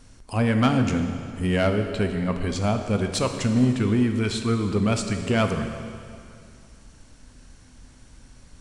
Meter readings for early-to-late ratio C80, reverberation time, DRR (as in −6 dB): 8.0 dB, 2.3 s, 5.5 dB